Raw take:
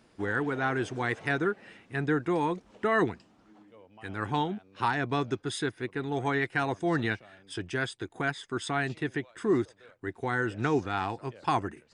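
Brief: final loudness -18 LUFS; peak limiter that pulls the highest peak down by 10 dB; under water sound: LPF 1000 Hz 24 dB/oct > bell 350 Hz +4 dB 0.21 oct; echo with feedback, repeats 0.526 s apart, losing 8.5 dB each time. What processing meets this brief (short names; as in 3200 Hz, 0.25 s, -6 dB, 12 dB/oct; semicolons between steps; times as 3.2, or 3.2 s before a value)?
limiter -25 dBFS; LPF 1000 Hz 24 dB/oct; bell 350 Hz +4 dB 0.21 oct; feedback echo 0.526 s, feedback 38%, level -8.5 dB; gain +18.5 dB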